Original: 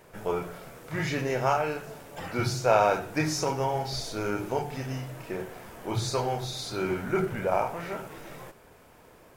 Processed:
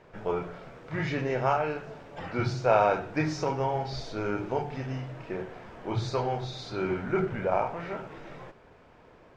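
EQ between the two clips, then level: air absorption 170 m; 0.0 dB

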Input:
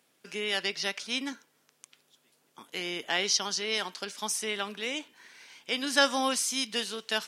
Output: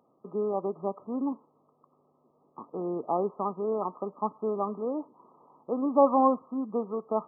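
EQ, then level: brick-wall FIR low-pass 1300 Hz; +7.0 dB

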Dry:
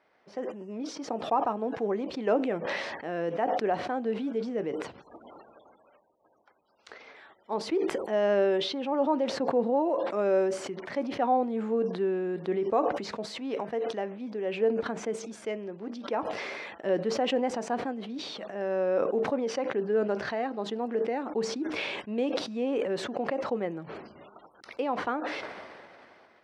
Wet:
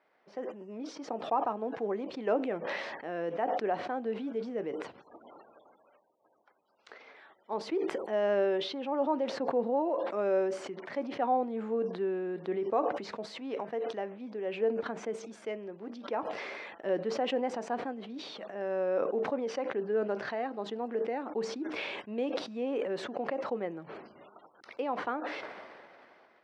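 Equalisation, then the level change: HPF 220 Hz 6 dB/oct; LPF 3800 Hz 6 dB/oct; -2.5 dB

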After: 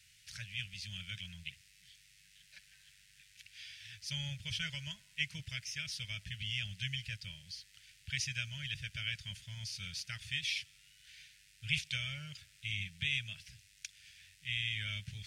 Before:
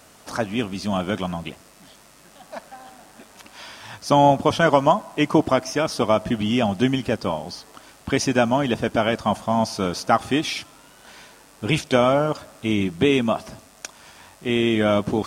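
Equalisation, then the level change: inverse Chebyshev band-stop 230–1200 Hz, stop band 40 dB; tone controls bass -7 dB, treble -2 dB; high shelf 6200 Hz -9.5 dB; -5.0 dB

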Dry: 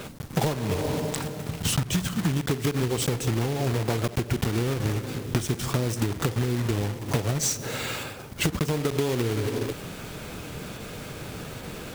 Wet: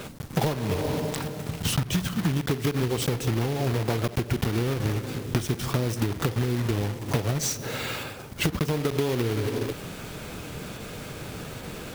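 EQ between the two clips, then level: dynamic EQ 7700 Hz, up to -5 dB, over -47 dBFS, Q 1.9; 0.0 dB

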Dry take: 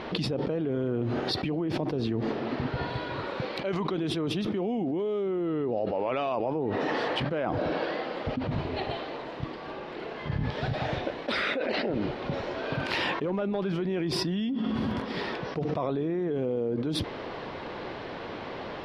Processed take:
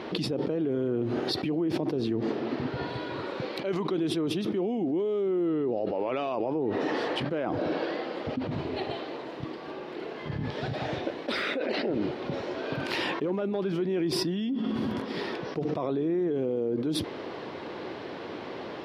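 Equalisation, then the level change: HPF 89 Hz; bell 340 Hz +6 dB 0.92 oct; high shelf 7600 Hz +11 dB; -3.0 dB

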